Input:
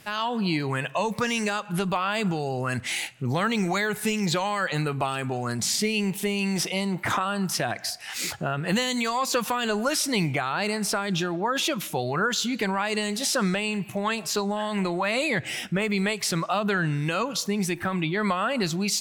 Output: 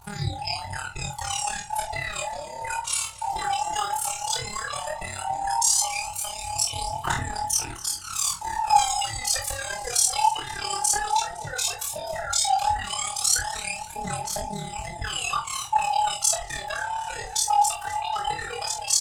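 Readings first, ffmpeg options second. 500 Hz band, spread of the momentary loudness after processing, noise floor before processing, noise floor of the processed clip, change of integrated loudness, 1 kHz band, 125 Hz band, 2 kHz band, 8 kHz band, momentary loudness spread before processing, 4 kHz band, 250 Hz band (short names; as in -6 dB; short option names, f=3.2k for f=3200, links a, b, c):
-10.0 dB, 10 LU, -40 dBFS, -38 dBFS, +0.5 dB, +4.5 dB, -8.0 dB, -5.0 dB, +8.0 dB, 4 LU, +0.5 dB, -18.5 dB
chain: -filter_complex "[0:a]afftfilt=real='real(if(between(b,1,1008),(2*floor((b-1)/48)+1)*48-b,b),0)':imag='imag(if(between(b,1,1008),(2*floor((b-1)/48)+1)*48-b,b),0)*if(between(b,1,1008),-1,1)':win_size=2048:overlap=0.75,acrossover=split=160|3000[a][b][c];[a]acompressor=threshold=-40dB:ratio=3[d];[d][b][c]amix=inputs=3:normalize=0,aphaser=in_gain=1:out_gain=1:delay=2.6:decay=0.75:speed=0.14:type=triangular,aeval=exprs='val(0)+0.00398*(sin(2*PI*60*n/s)+sin(2*PI*2*60*n/s)/2+sin(2*PI*3*60*n/s)/3+sin(2*PI*4*60*n/s)/4+sin(2*PI*5*60*n/s)/5)':c=same,equalizer=f=700:t=o:w=0.22:g=3.5,tremolo=f=35:d=0.889,equalizer=f=125:t=o:w=1:g=7,equalizer=f=250:t=o:w=1:g=-12,equalizer=f=500:t=o:w=1:g=-12,equalizer=f=1k:t=o:w=1:g=7,equalizer=f=2k:t=o:w=1:g=-9,equalizer=f=8k:t=o:w=1:g=12,flanger=delay=19.5:depth=4.5:speed=0.34,asplit=2[e][f];[f]adelay=44,volume=-9dB[g];[e][g]amix=inputs=2:normalize=0,aecho=1:1:255|510|765|1020|1275:0.119|0.0677|0.0386|0.022|0.0125,volume=1.5dB"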